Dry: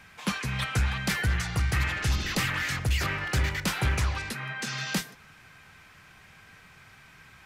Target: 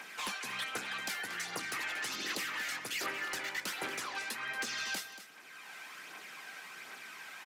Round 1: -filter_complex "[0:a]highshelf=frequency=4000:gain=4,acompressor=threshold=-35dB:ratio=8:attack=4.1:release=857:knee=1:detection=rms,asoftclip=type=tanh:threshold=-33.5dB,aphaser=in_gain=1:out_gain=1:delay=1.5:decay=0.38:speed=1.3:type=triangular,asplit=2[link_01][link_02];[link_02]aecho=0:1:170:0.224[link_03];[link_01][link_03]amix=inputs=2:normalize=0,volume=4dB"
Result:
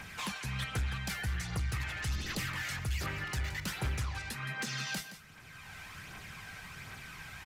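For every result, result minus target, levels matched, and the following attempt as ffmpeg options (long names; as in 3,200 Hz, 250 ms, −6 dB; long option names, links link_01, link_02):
250 Hz band +6.0 dB; echo 63 ms early
-filter_complex "[0:a]highpass=frequency=280:width=0.5412,highpass=frequency=280:width=1.3066,highshelf=frequency=4000:gain=4,acompressor=threshold=-35dB:ratio=8:attack=4.1:release=857:knee=1:detection=rms,asoftclip=type=tanh:threshold=-33.5dB,aphaser=in_gain=1:out_gain=1:delay=1.5:decay=0.38:speed=1.3:type=triangular,asplit=2[link_01][link_02];[link_02]aecho=0:1:170:0.224[link_03];[link_01][link_03]amix=inputs=2:normalize=0,volume=4dB"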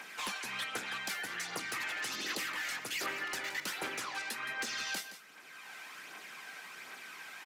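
echo 63 ms early
-filter_complex "[0:a]highpass=frequency=280:width=0.5412,highpass=frequency=280:width=1.3066,highshelf=frequency=4000:gain=4,acompressor=threshold=-35dB:ratio=8:attack=4.1:release=857:knee=1:detection=rms,asoftclip=type=tanh:threshold=-33.5dB,aphaser=in_gain=1:out_gain=1:delay=1.5:decay=0.38:speed=1.3:type=triangular,asplit=2[link_01][link_02];[link_02]aecho=0:1:233:0.224[link_03];[link_01][link_03]amix=inputs=2:normalize=0,volume=4dB"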